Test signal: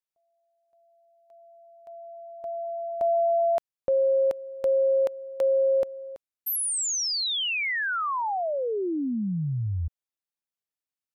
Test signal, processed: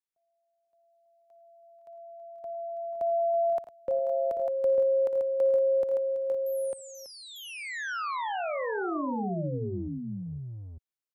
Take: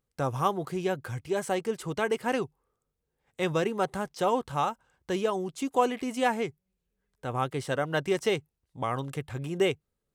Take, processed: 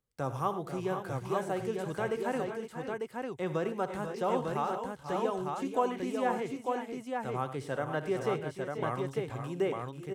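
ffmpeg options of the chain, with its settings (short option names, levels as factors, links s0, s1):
-filter_complex "[0:a]acrossover=split=110|1900[s0][s1][s2];[s0]asoftclip=type=tanh:threshold=0.01[s3];[s2]acompressor=threshold=0.00708:ratio=12:attack=0.45:release=27:detection=peak[s4];[s3][s1][s4]amix=inputs=3:normalize=0,aecho=1:1:59|88|105|487|513|898:0.178|0.15|0.178|0.282|0.316|0.631,volume=0.562"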